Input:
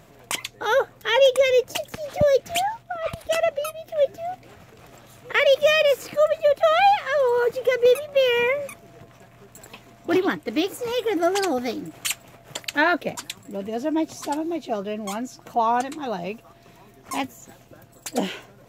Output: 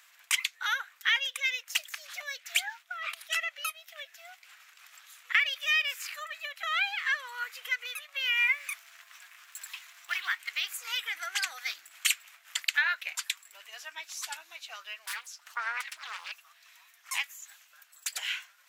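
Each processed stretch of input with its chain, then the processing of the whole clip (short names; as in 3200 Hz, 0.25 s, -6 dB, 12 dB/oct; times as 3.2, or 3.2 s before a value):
8.37–10.5 G.711 law mismatch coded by mu + bell 480 Hz -14 dB 0.36 oct
15.06–16.32 notch comb 270 Hz + Doppler distortion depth 0.95 ms
whole clip: dynamic EQ 2200 Hz, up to +5 dB, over -39 dBFS, Q 1.4; compressor 5:1, threshold -21 dBFS; HPF 1400 Hz 24 dB/oct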